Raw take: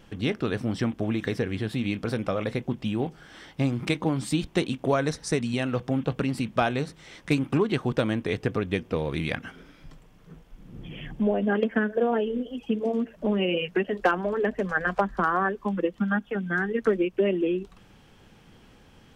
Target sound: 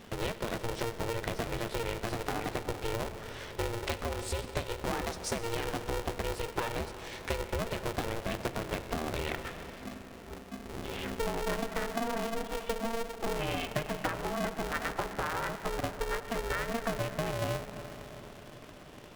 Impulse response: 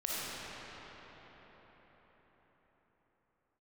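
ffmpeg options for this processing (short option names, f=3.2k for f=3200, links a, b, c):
-filter_complex "[0:a]acompressor=threshold=-34dB:ratio=4,asplit=2[a][b];[1:a]atrim=start_sample=2205[c];[b][c]afir=irnorm=-1:irlink=0,volume=-13dB[d];[a][d]amix=inputs=2:normalize=0,aeval=exprs='val(0)*sgn(sin(2*PI*230*n/s))':c=same"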